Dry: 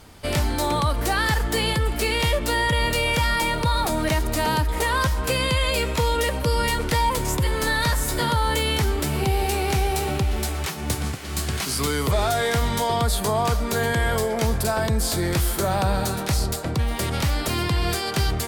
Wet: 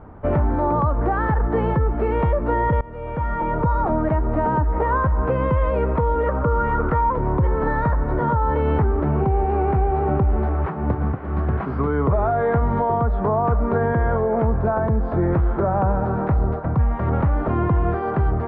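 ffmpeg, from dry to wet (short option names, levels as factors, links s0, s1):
-filter_complex "[0:a]asettb=1/sr,asplit=3[s0][s1][s2];[s0]atrim=end=6.264[s3];[s1]atrim=start=6.26:end=7.13,asetpts=PTS-STARTPTS,afade=t=in:d=0.004:c=qsin,afade=t=out:st=0.866:d=0.004:c=qsin,equalizer=f=1300:w=3.8:g=11.5[s4];[s2]atrim=start=7.126[s5];[s3][s4]acrossfade=d=0.004:c1=hsin:c2=qsin[s6];[s6][s5]acrossfade=d=0.004:c1=qsin:c2=hsin,asettb=1/sr,asplit=3[s7][s8][s9];[s7]atrim=end=16.594[s10];[s8]atrim=start=16.59:end=17.07,asetpts=PTS-STARTPTS,afade=t=in:d=0.004:c=qsin,afade=t=out:st=0.476:d=0.004:c=qsin,equalizer=f=380:w=1.1:g=-8[s11];[s9]atrim=start=17.066[s12];[s10][s11]acrossfade=d=0.004:c1=hsin:c2=qsin[s13];[s13][s12]acrossfade=d=0.004:c1=qsin:c2=hsin,asplit=2[s14][s15];[s14]atrim=end=2.81,asetpts=PTS-STARTPTS,afade=t=out:st=2.806:d=0.004:c=hsin:silence=0.0749894[s16];[s15]atrim=start=2.81,asetpts=PTS-STARTPTS,afade=t=in:d=1.06:silence=0.0749894[s17];[s16][s17]concat=n=2:v=0:a=1,lowpass=f=1300:w=0.5412,lowpass=f=1300:w=1.3066,alimiter=limit=0.133:level=0:latency=1:release=259,volume=2.11"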